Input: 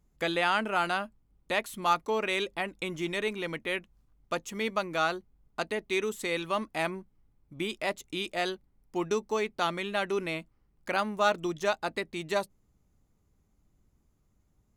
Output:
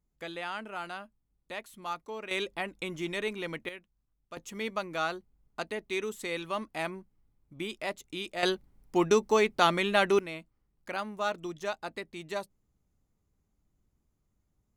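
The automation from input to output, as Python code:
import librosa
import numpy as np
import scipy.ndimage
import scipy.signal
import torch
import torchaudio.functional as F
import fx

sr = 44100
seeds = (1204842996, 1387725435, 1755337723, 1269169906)

y = fx.gain(x, sr, db=fx.steps((0.0, -10.5), (2.31, -2.0), (3.69, -13.0), (4.37, -3.5), (8.43, 5.5), (10.19, -6.0)))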